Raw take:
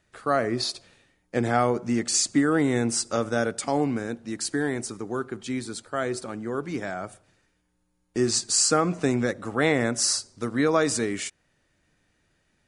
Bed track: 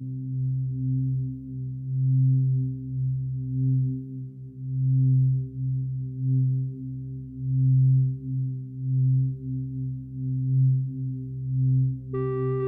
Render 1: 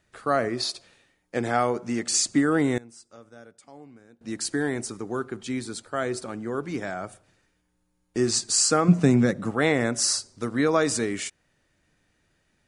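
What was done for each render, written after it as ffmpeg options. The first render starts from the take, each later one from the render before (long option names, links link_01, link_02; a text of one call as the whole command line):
ffmpeg -i in.wav -filter_complex "[0:a]asettb=1/sr,asplit=3[link_01][link_02][link_03];[link_01]atrim=end=0.484[link_04];[link_02]atrim=start=0.48:end=2.08,asetpts=PTS-STARTPTS,afade=type=in:duration=0.004:curve=qsin,afade=type=out:start_time=1.596:duration=0.004:curve=qsin,lowshelf=frequency=260:gain=-6[link_05];[link_03]atrim=start=2.076[link_06];[link_04][link_05]acrossfade=duration=0.004:curve1=hsin:curve2=qsin[link_07];[link_07][link_06]acrossfade=duration=0.004:curve1=qsin:curve2=hsin,asettb=1/sr,asplit=3[link_08][link_09][link_10];[link_08]atrim=end=8.884[link_11];[link_09]atrim=start=8.88:end=9.51,asetpts=PTS-STARTPTS,afade=type=in:duration=0.004:curve=qsin,afade=type=out:start_time=0.626:duration=0.004:curve=qsin,equalizer=frequency=170:width=1.4:gain=13[link_12];[link_10]atrim=start=9.506[link_13];[link_11][link_12]acrossfade=duration=0.004:curve1=hsin:curve2=qsin[link_14];[link_14][link_13]acrossfade=duration=0.004:curve1=qsin:curve2=hsin,asplit=3[link_15][link_16][link_17];[link_15]atrim=end=2.78,asetpts=PTS-STARTPTS,afade=type=out:start_time=2.65:duration=0.13:curve=log:silence=0.0749894[link_18];[link_16]atrim=start=2.78:end=4.21,asetpts=PTS-STARTPTS,volume=-22.5dB[link_19];[link_17]atrim=start=4.21,asetpts=PTS-STARTPTS,afade=type=in:duration=0.13:curve=log:silence=0.0749894[link_20];[link_18][link_19][link_20]concat=n=3:v=0:a=1" out.wav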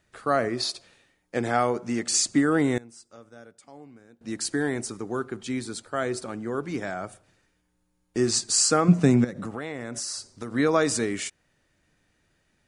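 ffmpeg -i in.wav -filter_complex "[0:a]asettb=1/sr,asplit=3[link_01][link_02][link_03];[link_01]atrim=end=9.244[link_04];[link_02]atrim=start=9.24:end=10.54,asetpts=PTS-STARTPTS,afade=type=in:duration=0.004:curve=qsin,afade=type=out:start_time=1.296:duration=0.004:curve=qsin,acompressor=threshold=-29dB:ratio=8:attack=3.2:release=140:knee=1:detection=peak[link_05];[link_03]atrim=start=10.536[link_06];[link_04][link_05]acrossfade=duration=0.004:curve1=hsin:curve2=qsin[link_07];[link_07][link_06]acrossfade=duration=0.004:curve1=qsin:curve2=hsin" out.wav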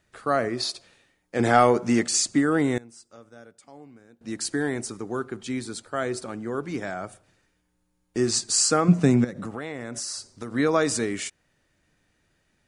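ffmpeg -i in.wav -filter_complex "[0:a]asettb=1/sr,asplit=3[link_01][link_02][link_03];[link_01]atrim=end=1.394[link_04];[link_02]atrim=start=1.39:end=2.07,asetpts=PTS-STARTPTS,afade=type=in:duration=0.004:curve=qsin,afade=type=out:start_time=0.676:duration=0.004:curve=qsin,acontrast=71[link_05];[link_03]atrim=start=2.066[link_06];[link_04][link_05]acrossfade=duration=0.004:curve1=hsin:curve2=qsin[link_07];[link_07][link_06]acrossfade=duration=0.004:curve1=qsin:curve2=hsin" out.wav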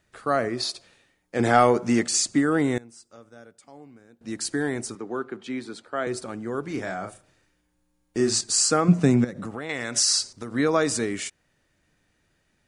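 ffmpeg -i in.wav -filter_complex "[0:a]asettb=1/sr,asplit=3[link_01][link_02][link_03];[link_01]atrim=end=4.954[link_04];[link_02]atrim=start=4.95:end=6.07,asetpts=PTS-STARTPTS,afade=type=in:duration=0.004:curve=qsin,afade=type=out:start_time=1.116:duration=0.004:curve=qsin,acrossover=split=180 4200:gain=0.2 1 0.224[link_05][link_06][link_07];[link_05][link_06][link_07]amix=inputs=3:normalize=0[link_08];[link_03]atrim=start=6.066[link_09];[link_04][link_08]acrossfade=duration=0.004:curve1=hsin:curve2=qsin[link_10];[link_10][link_09]acrossfade=duration=0.004:curve1=qsin:curve2=hsin,asettb=1/sr,asplit=3[link_11][link_12][link_13];[link_11]atrim=end=6.634[link_14];[link_12]atrim=start=6.63:end=8.41,asetpts=PTS-STARTPTS,afade=type=in:duration=0.004:curve=qsin,afade=type=out:start_time=1.776:duration=0.004:curve=qsin,asplit=2[link_15][link_16];[link_16]adelay=37,volume=-6dB[link_17];[link_15][link_17]amix=inputs=2:normalize=0,atrim=end_sample=78498[link_18];[link_13]atrim=start=8.406[link_19];[link_14][link_18]acrossfade=duration=0.004:curve1=hsin:curve2=qsin[link_20];[link_20][link_19]acrossfade=duration=0.004:curve1=qsin:curve2=hsin,asettb=1/sr,asplit=3[link_21][link_22][link_23];[link_21]atrim=end=9.694[link_24];[link_22]atrim=start=9.69:end=10.33,asetpts=PTS-STARTPTS,afade=type=in:duration=0.004:curve=qsin,afade=type=out:start_time=0.636:duration=0.004:curve=qsin,equalizer=frequency=4100:width=0.31:gain=13.5[link_25];[link_23]atrim=start=10.326[link_26];[link_24][link_25]acrossfade=duration=0.004:curve1=hsin:curve2=qsin[link_27];[link_27][link_26]acrossfade=duration=0.004:curve1=qsin:curve2=hsin" out.wav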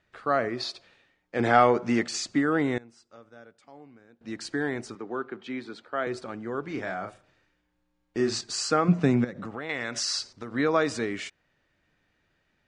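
ffmpeg -i in.wav -af "lowpass=3800,lowshelf=frequency=480:gain=-4.5" out.wav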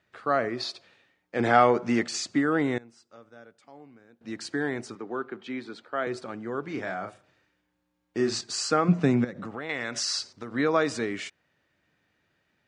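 ffmpeg -i in.wav -af "highpass=84" out.wav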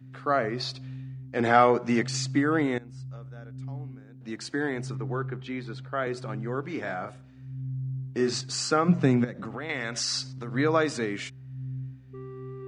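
ffmpeg -i in.wav -i bed.wav -filter_complex "[1:a]volume=-13.5dB[link_01];[0:a][link_01]amix=inputs=2:normalize=0" out.wav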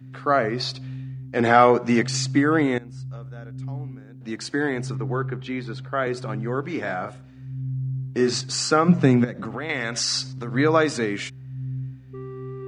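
ffmpeg -i in.wav -af "volume=5dB,alimiter=limit=-3dB:level=0:latency=1" out.wav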